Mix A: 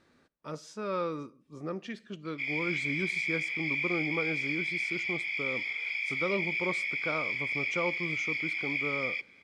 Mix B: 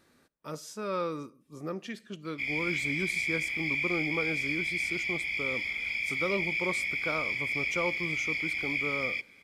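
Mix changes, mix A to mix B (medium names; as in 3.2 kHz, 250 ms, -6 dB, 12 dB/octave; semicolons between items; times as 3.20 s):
background: remove high-pass 770 Hz 24 dB/octave; master: remove distance through air 80 m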